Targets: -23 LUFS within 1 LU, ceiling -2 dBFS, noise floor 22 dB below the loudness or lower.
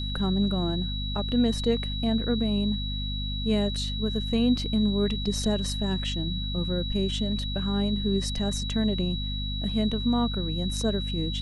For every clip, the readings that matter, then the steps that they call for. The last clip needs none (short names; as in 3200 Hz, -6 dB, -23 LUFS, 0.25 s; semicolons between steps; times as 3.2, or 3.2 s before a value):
hum 50 Hz; harmonics up to 250 Hz; hum level -29 dBFS; steady tone 3900 Hz; tone level -34 dBFS; loudness -27.0 LUFS; peak -12.5 dBFS; loudness target -23.0 LUFS
-> notches 50/100/150/200/250 Hz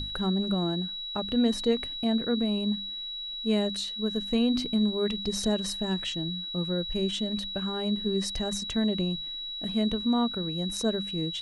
hum none; steady tone 3900 Hz; tone level -34 dBFS
-> notch 3900 Hz, Q 30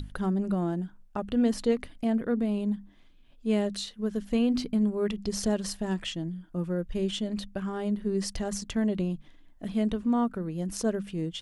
steady tone none; loudness -30.0 LUFS; peak -14.0 dBFS; loudness target -23.0 LUFS
-> gain +7 dB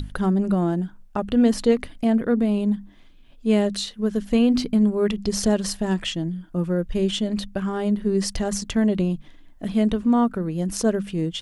loudness -23.0 LUFS; peak -7.0 dBFS; noise floor -48 dBFS